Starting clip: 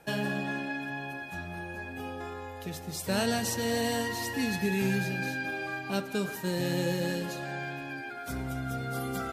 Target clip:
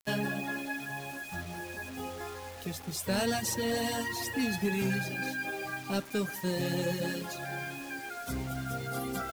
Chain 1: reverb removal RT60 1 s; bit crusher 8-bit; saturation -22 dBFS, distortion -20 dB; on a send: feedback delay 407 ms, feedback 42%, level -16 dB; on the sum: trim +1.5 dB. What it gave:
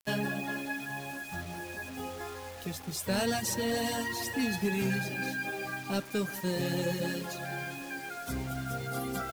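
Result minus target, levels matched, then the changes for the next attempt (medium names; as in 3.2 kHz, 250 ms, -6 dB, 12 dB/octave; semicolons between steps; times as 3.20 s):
echo-to-direct +8.5 dB
change: feedback delay 407 ms, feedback 42%, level -24.5 dB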